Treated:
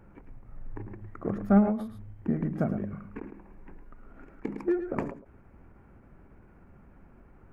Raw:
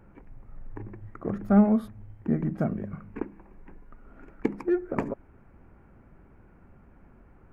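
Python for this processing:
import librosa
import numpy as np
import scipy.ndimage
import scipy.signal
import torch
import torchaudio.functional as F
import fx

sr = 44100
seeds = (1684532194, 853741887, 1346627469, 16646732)

p1 = x + fx.echo_single(x, sr, ms=108, db=-10.5, dry=0)
y = fx.end_taper(p1, sr, db_per_s=120.0)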